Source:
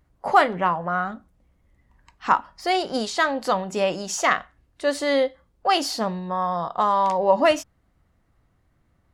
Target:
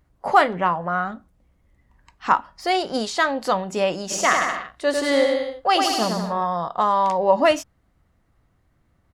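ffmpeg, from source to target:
ffmpeg -i in.wav -filter_complex "[0:a]asplit=3[link_01][link_02][link_03];[link_01]afade=type=out:start_time=4.1:duration=0.02[link_04];[link_02]aecho=1:1:100|180|244|295.2|336.2:0.631|0.398|0.251|0.158|0.1,afade=type=in:start_time=4.1:duration=0.02,afade=type=out:start_time=6.44:duration=0.02[link_05];[link_03]afade=type=in:start_time=6.44:duration=0.02[link_06];[link_04][link_05][link_06]amix=inputs=3:normalize=0,volume=1dB" out.wav

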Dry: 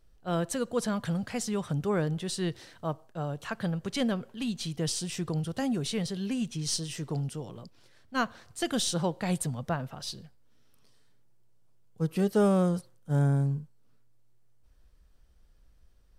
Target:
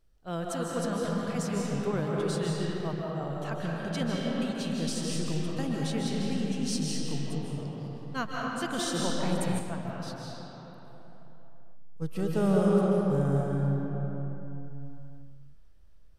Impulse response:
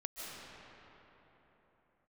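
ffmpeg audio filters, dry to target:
-filter_complex "[1:a]atrim=start_sample=2205[link_01];[0:a][link_01]afir=irnorm=-1:irlink=0,asettb=1/sr,asplit=3[link_02][link_03][link_04];[link_02]atrim=end=9.594[link_05];[link_03]atrim=start=9.59:end=12.02,asetpts=PTS-STARTPTS,afade=type=in:duration=0.004:curve=qsin,afade=type=out:start_time=2.426:duration=0.004:curve=qsin,flanger=delay=2.3:depth=2.8:regen=-69:speed=1.5:shape=triangular[link_06];[link_04]atrim=start=12.016[link_07];[link_05][link_06]acrossfade=duration=0.004:curve1=hsin:curve2=qsin[link_08];[link_08][link_07]acrossfade=duration=0.004:curve1=qsin:curve2=hsin"

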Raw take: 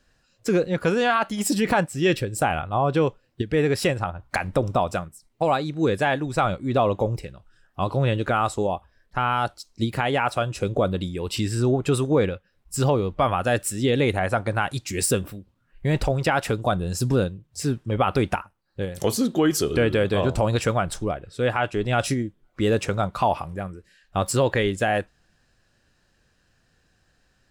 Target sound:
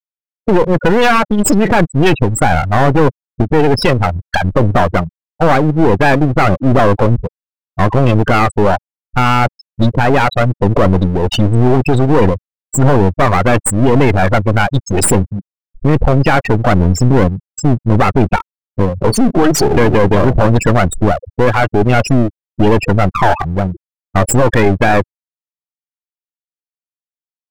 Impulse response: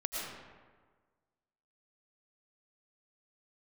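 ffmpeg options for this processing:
-af "apsyclip=20dB,afftfilt=real='re*gte(hypot(re,im),0.891)':imag='im*gte(hypot(re,im),0.891)':win_size=1024:overlap=0.75,aeval=exprs='clip(val(0),-1,0.119)':channel_layout=same,volume=-1dB"

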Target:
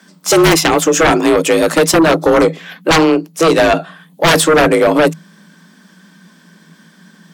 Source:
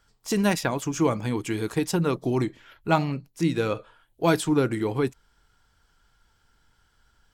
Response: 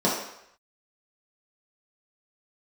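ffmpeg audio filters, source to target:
-af "aeval=exprs='0.398*(cos(1*acos(clip(val(0)/0.398,-1,1)))-cos(1*PI/2))+0.0126*(cos(8*acos(clip(val(0)/0.398,-1,1)))-cos(8*PI/2))':channel_layout=same,afreqshift=160,aeval=exprs='0.531*sin(PI/2*5.62*val(0)/0.531)':channel_layout=same"

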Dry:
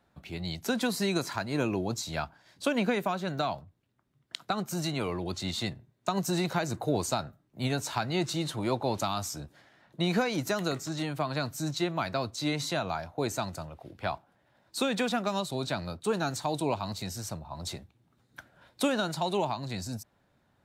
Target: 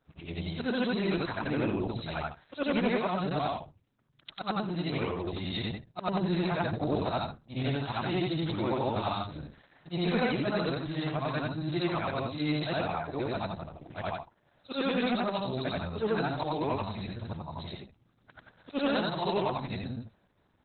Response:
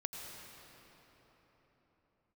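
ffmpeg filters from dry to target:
-af "afftfilt=real='re':imag='-im':win_size=8192:overlap=0.75,asoftclip=type=tanh:threshold=-25.5dB,volume=6.5dB" -ar 48000 -c:a libopus -b:a 8k

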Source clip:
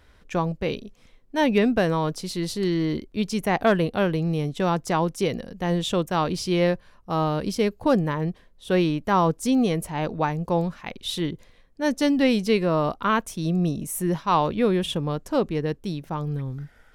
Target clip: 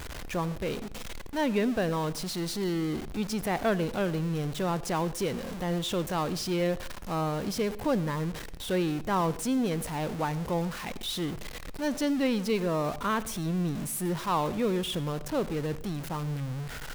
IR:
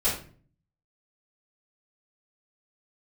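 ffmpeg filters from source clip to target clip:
-filter_complex "[0:a]aeval=exprs='val(0)+0.5*0.0562*sgn(val(0))':channel_layout=same,asplit=2[link_01][link_02];[1:a]atrim=start_sample=2205,adelay=77[link_03];[link_02][link_03]afir=irnorm=-1:irlink=0,volume=-29.5dB[link_04];[link_01][link_04]amix=inputs=2:normalize=0,volume=-8.5dB"

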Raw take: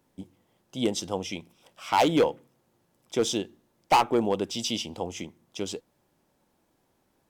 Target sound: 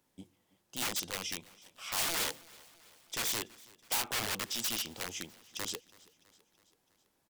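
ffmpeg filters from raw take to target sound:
ffmpeg -i in.wav -af "aeval=exprs='(mod(17.8*val(0)+1,2)-1)/17.8':channel_layout=same,tiltshelf=frequency=1400:gain=-4.5,aecho=1:1:328|656|984|1312:0.0708|0.0418|0.0246|0.0145,volume=-5dB" out.wav

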